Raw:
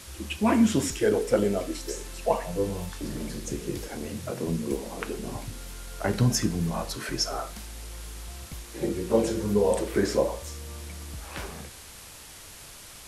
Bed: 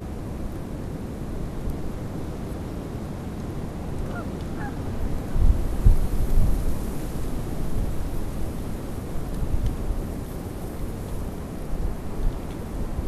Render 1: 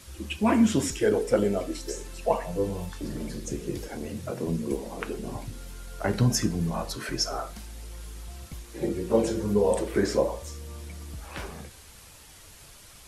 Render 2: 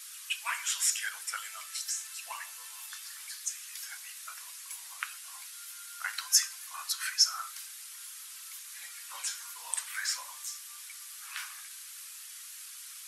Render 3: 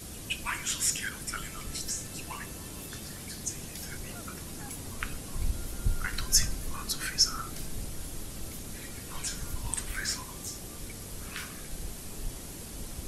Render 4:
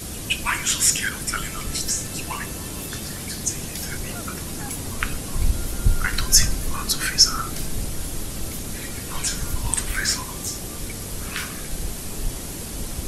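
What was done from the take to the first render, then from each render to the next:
denoiser 6 dB, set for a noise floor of -46 dBFS
steep high-pass 1200 Hz 36 dB/oct; high shelf 5800 Hz +9 dB
add bed -12.5 dB
gain +10 dB; limiter -1 dBFS, peak gain reduction 2.5 dB

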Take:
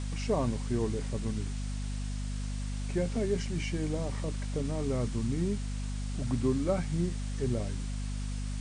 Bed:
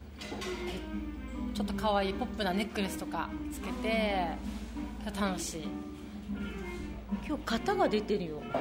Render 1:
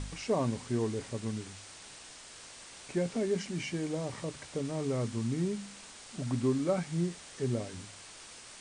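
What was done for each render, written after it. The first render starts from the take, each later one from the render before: de-hum 50 Hz, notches 5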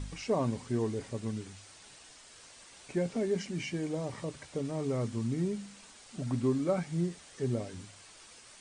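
denoiser 6 dB, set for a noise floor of -50 dBFS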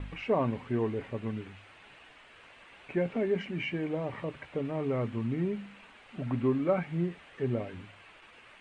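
gate with hold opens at -44 dBFS; EQ curve 150 Hz 0 dB, 2700 Hz +6 dB, 5400 Hz -20 dB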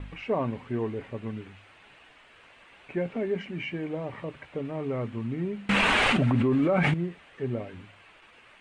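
5.69–6.94 fast leveller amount 100%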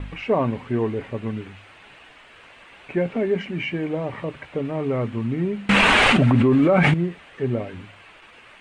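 gain +7 dB

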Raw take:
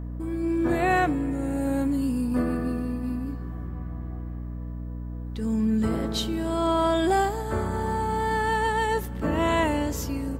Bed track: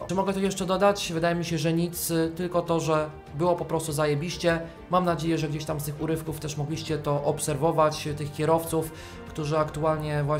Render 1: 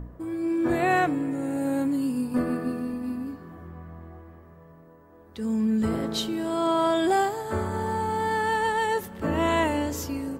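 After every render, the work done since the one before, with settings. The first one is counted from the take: de-hum 60 Hz, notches 5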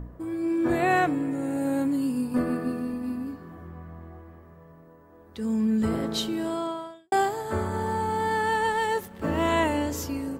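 6.46–7.12 fade out quadratic; 8.72–9.52 G.711 law mismatch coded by A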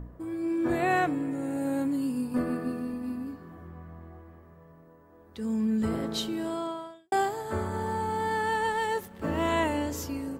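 gain -3 dB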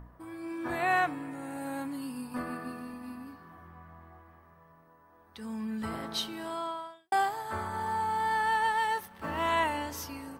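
resonant low shelf 650 Hz -8 dB, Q 1.5; notch 7200 Hz, Q 5.1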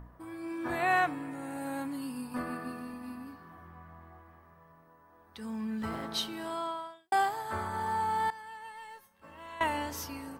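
5.5–6.08 median filter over 5 samples; 8.3–9.61 resonator 540 Hz, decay 0.26 s, mix 90%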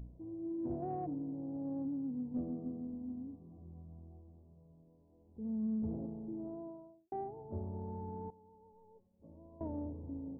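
Gaussian blur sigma 18 samples; in parallel at -11 dB: soft clip -38 dBFS, distortion -15 dB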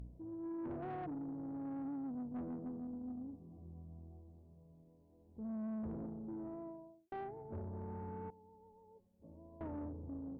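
tube stage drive 39 dB, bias 0.2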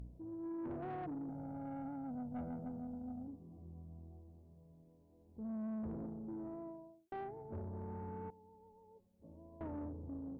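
1.29–3.28 comb 1.4 ms, depth 90%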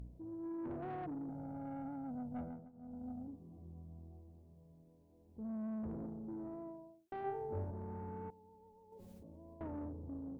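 2.4–3.04 dip -19.5 dB, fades 0.32 s; 7.22–7.71 flutter echo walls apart 3.5 m, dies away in 0.53 s; 8.92–9.54 fast leveller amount 100%

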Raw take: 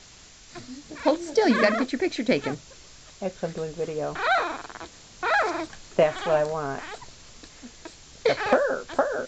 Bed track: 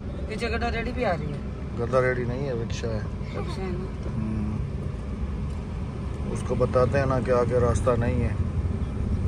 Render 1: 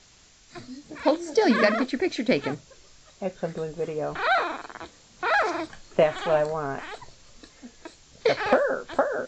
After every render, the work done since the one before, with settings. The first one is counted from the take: noise print and reduce 6 dB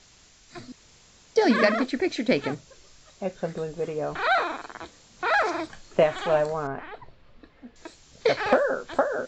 0.72–1.36 room tone; 6.67–7.76 air absorption 410 m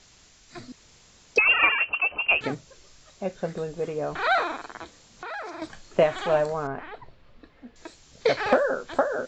1.38–2.41 inverted band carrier 3000 Hz; 4.83–5.62 compressor 3:1, threshold -36 dBFS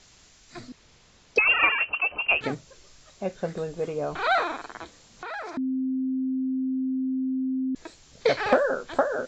0.69–2.43 air absorption 76 m; 3.86–4.35 bell 1800 Hz -7.5 dB 0.22 oct; 5.57–7.75 bleep 261 Hz -24 dBFS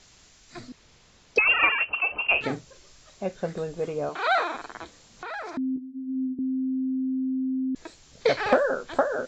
1.88–3.26 doubler 42 ms -11 dB; 4.09–4.55 HPF 300 Hz; 5.76–6.39 ensemble effect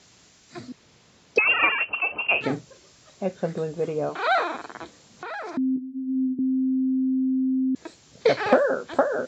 HPF 120 Hz 12 dB/oct; low shelf 490 Hz +5.5 dB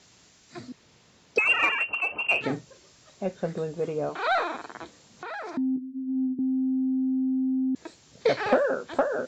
in parallel at -5.5 dB: soft clip -16.5 dBFS, distortion -14 dB; on the sum: resonator 920 Hz, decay 0.25 s, mix 50%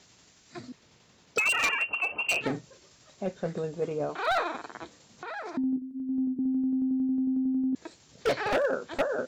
wavefolder -18.5 dBFS; tremolo saw down 11 Hz, depth 35%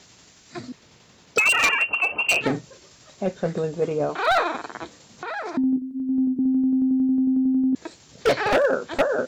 gain +7 dB

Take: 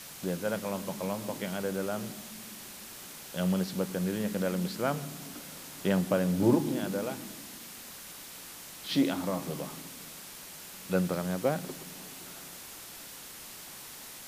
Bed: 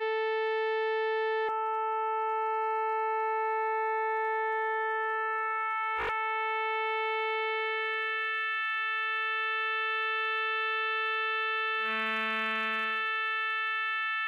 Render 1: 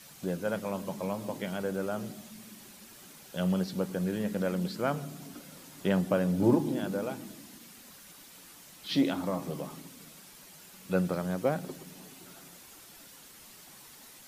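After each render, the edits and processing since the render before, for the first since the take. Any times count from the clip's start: denoiser 8 dB, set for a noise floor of -46 dBFS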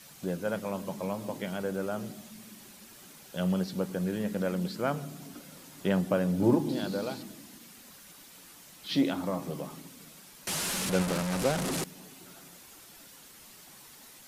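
6.69–7.23 bell 4300 Hz +14.5 dB 0.5 oct; 10.47–11.84 delta modulation 64 kbps, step -25 dBFS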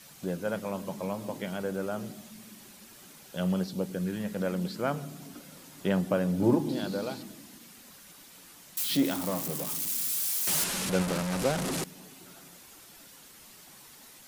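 3.66–4.36 bell 2300 Hz -> 260 Hz -8.5 dB; 8.77–10.64 switching spikes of -25.5 dBFS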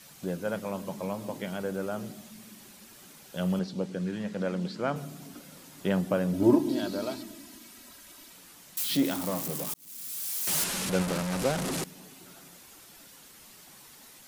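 3.59–4.96 BPF 100–6400 Hz; 6.33–8.33 comb 3.1 ms; 9.74–10.58 fade in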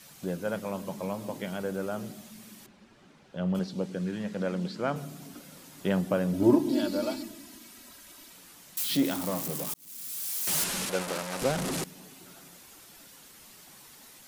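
2.66–3.55 tape spacing loss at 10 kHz 25 dB; 6.72–7.28 comb 3.5 ms; 10.85–11.42 tone controls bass -14 dB, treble 0 dB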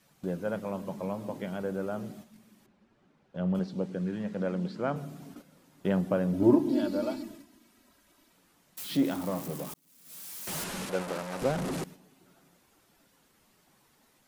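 high shelf 2300 Hz -10 dB; gate -47 dBFS, range -8 dB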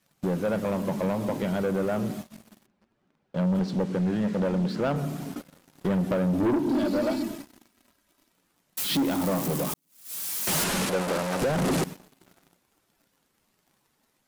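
compressor 2:1, threshold -32 dBFS, peak gain reduction 9 dB; sample leveller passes 3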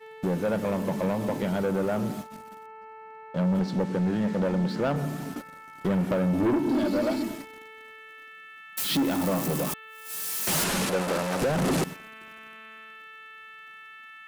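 add bed -15 dB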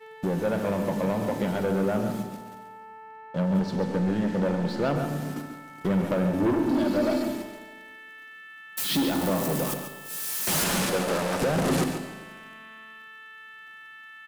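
outdoor echo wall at 24 m, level -8 dB; Schroeder reverb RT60 1.4 s, combs from 31 ms, DRR 9 dB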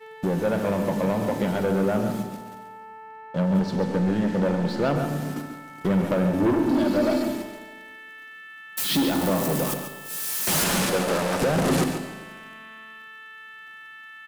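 gain +2.5 dB

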